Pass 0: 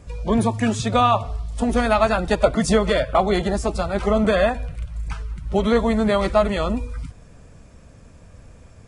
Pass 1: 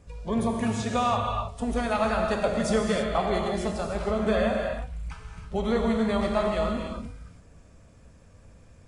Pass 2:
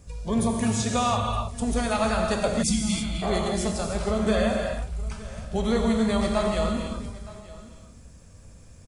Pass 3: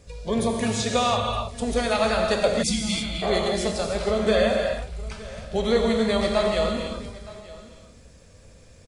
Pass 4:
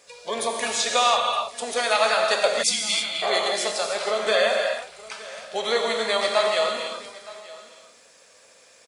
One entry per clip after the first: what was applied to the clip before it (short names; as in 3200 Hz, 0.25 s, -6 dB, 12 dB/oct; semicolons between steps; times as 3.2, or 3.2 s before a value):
non-linear reverb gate 0.35 s flat, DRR 1 dB; gain -9 dB
tone controls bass +4 dB, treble +11 dB; spectral delete 2.63–3.22, 360–2000 Hz; echo 0.917 s -19.5 dB
graphic EQ 500/2000/4000 Hz +9/+6/+8 dB; gain -3 dB
HPF 710 Hz 12 dB/oct; gain +5 dB